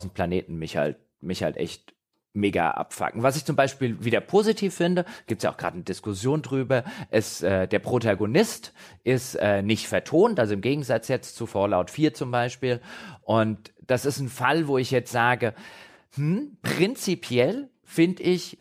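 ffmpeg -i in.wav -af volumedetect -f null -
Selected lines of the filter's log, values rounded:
mean_volume: -25.1 dB
max_volume: -6.7 dB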